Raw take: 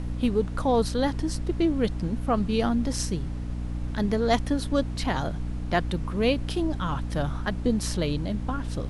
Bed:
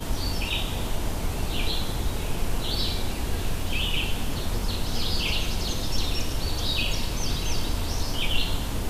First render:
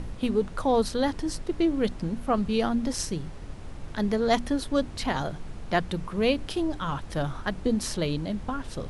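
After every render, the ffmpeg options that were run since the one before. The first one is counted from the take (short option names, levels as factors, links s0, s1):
-af "bandreject=f=60:t=h:w=6,bandreject=f=120:t=h:w=6,bandreject=f=180:t=h:w=6,bandreject=f=240:t=h:w=6,bandreject=f=300:t=h:w=6"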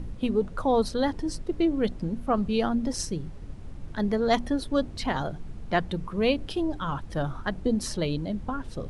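-af "afftdn=nr=8:nf=-40"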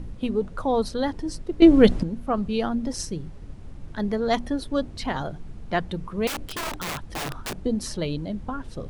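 -filter_complex "[0:a]asettb=1/sr,asplit=3[s0][s1][s2];[s0]atrim=end=6.274[s3];[s1]atrim=start=6.27:end=7.59,asetpts=PTS-STARTPTS,afade=t=in:d=0.004:c=qsin,afade=t=out:st=1.316:d=0.004:c=qsin,aeval=exprs='(mod(18.8*val(0)+1,2)-1)/18.8':c=same[s4];[s2]atrim=start=7.586[s5];[s3][s4]acrossfade=d=0.004:c1=hsin:c2=qsin[s6];[s6][s5]acrossfade=d=0.004:c1=qsin:c2=hsin,asplit=3[s7][s8][s9];[s7]atrim=end=1.622[s10];[s8]atrim=start=1.618:end=2.032,asetpts=PTS-STARTPTS,volume=3.76[s11];[s9]atrim=start=2.028[s12];[s10][s11]acrossfade=d=0.004:c1=hsin:c2=hsin[s13];[s13][s12]acrossfade=d=0.004:c1=hsin:c2=hsin"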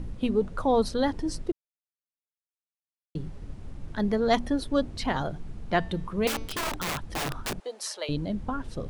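-filter_complex "[0:a]asettb=1/sr,asplit=3[s0][s1][s2];[s0]atrim=end=5.774[s3];[s1]atrim=start=5.77:end=6.61,asetpts=PTS-STARTPTS,afade=t=in:d=0.004:c=qsin,afade=t=out:st=0.836:d=0.004:c=qsin,bandreject=f=223.6:t=h:w=4,bandreject=f=447.2:t=h:w=4,bandreject=f=670.8:t=h:w=4,bandreject=f=894.4:t=h:w=4,bandreject=f=1118:t=h:w=4,bandreject=f=1341.6:t=h:w=4,bandreject=f=1565.2:t=h:w=4,bandreject=f=1788.8:t=h:w=4,bandreject=f=2012.4:t=h:w=4,bandreject=f=2236:t=h:w=4,bandreject=f=2459.6:t=h:w=4,bandreject=f=2683.2:t=h:w=4,bandreject=f=2906.8:t=h:w=4,bandreject=f=3130.4:t=h:w=4,bandreject=f=3354:t=h:w=4,bandreject=f=3577.6:t=h:w=4,bandreject=f=3801.2:t=h:w=4,bandreject=f=4024.8:t=h:w=4,bandreject=f=4248.4:t=h:w=4,bandreject=f=4472:t=h:w=4,bandreject=f=4695.6:t=h:w=4,bandreject=f=4919.2:t=h:w=4,bandreject=f=5142.8:t=h:w=4,bandreject=f=5366.4:t=h:w=4,bandreject=f=5590:t=h:w=4,bandreject=f=5813.6:t=h:w=4,bandreject=f=6037.2:t=h:w=4,bandreject=f=6260.8:t=h:w=4[s4];[s2]atrim=start=6.606[s5];[s3][s4]acrossfade=d=0.004:c1=hsin:c2=qsin[s6];[s6][s5]acrossfade=d=0.004:c1=qsin:c2=hsin,asettb=1/sr,asplit=3[s7][s8][s9];[s7]atrim=end=7.604[s10];[s8]atrim=start=7.6:end=8.09,asetpts=PTS-STARTPTS,afade=t=in:d=0.004:c=qsin,afade=t=out:st=0.486:d=0.004:c=qsin,highpass=f=570:w=0.5412,highpass=f=570:w=1.3066[s11];[s9]atrim=start=8.086[s12];[s10][s11]acrossfade=d=0.004:c1=hsin:c2=qsin[s13];[s13][s12]acrossfade=d=0.004:c1=qsin:c2=hsin,asplit=3[s14][s15][s16];[s14]atrim=end=1.52,asetpts=PTS-STARTPTS,afade=t=out:st=1.516:d=0.004:c=hsin[s17];[s15]atrim=start=1.52:end=3.15,asetpts=PTS-STARTPTS,volume=0[s18];[s16]atrim=start=3.15,asetpts=PTS-STARTPTS,afade=t=in:d=0.004:c=hsin[s19];[s17][s18][s19]concat=n=3:v=0:a=1"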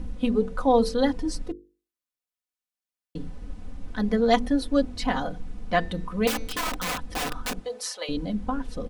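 -af "bandreject=f=50:t=h:w=6,bandreject=f=100:t=h:w=6,bandreject=f=150:t=h:w=6,bandreject=f=200:t=h:w=6,bandreject=f=250:t=h:w=6,bandreject=f=300:t=h:w=6,bandreject=f=350:t=h:w=6,bandreject=f=400:t=h:w=6,bandreject=f=450:t=h:w=6,bandreject=f=500:t=h:w=6,aecho=1:1:4:0.76"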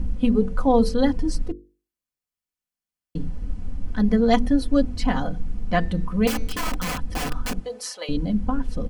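-af "bass=f=250:g=9,treble=f=4000:g=0,bandreject=f=3700:w=12"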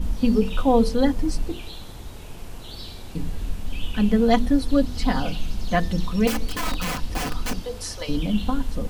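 -filter_complex "[1:a]volume=0.299[s0];[0:a][s0]amix=inputs=2:normalize=0"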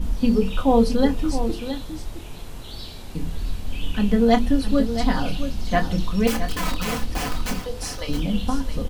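-filter_complex "[0:a]asplit=2[s0][s1];[s1]adelay=26,volume=0.335[s2];[s0][s2]amix=inputs=2:normalize=0,aecho=1:1:668:0.316"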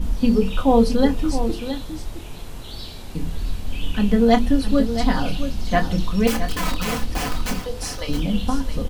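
-af "volume=1.19"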